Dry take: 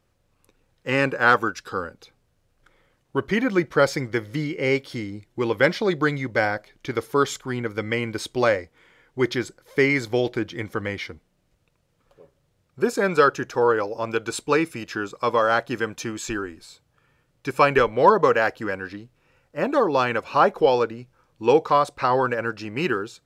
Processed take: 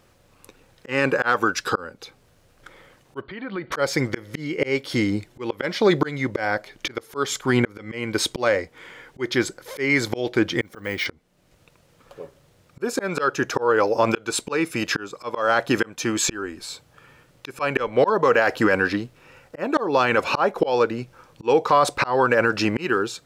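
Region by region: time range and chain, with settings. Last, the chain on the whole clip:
3.21–3.72 rippled Chebyshev low-pass 4600 Hz, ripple 3 dB + compressor, threshold -38 dBFS
10.61–11.06 block floating point 7-bit + auto swell 0.592 s + careless resampling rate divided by 2×, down none, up hold
whole clip: auto swell 0.514 s; low shelf 130 Hz -7.5 dB; maximiser +20.5 dB; gain -7 dB

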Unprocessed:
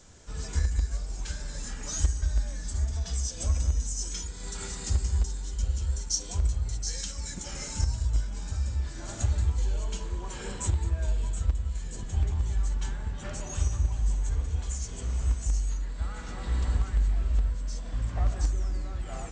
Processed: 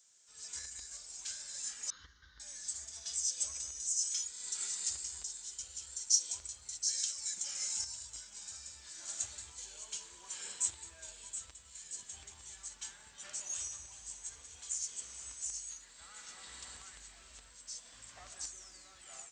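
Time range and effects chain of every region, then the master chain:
1.9–2.4 minimum comb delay 0.75 ms + LPF 3200 Hz 24 dB/oct + fixed phaser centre 2500 Hz, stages 6
whole clip: differentiator; AGC gain up to 9.5 dB; gain -6.5 dB

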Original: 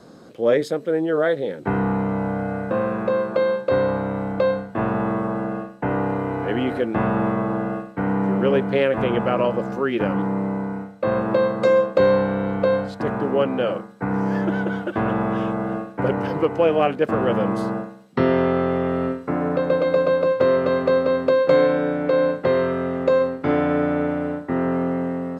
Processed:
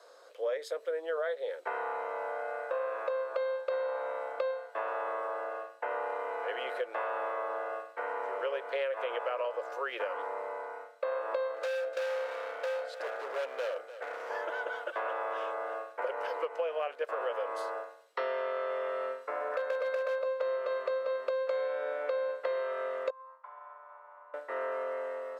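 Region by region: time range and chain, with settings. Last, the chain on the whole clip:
11.54–14.3 Butterworth band-stop 1000 Hz, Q 2.5 + hard clip -22.5 dBFS + echo 0.297 s -15 dB
19.52–20.19 bell 1600 Hz +6 dB 0.65 oct + hard clip -13.5 dBFS
23.1–24.34 compressor 5:1, threshold -22 dBFS + double band-pass 370 Hz, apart 2.9 oct
whole clip: elliptic high-pass 500 Hz, stop band 70 dB; notch 790 Hz, Q 12; compressor, threshold -25 dBFS; gain -5 dB

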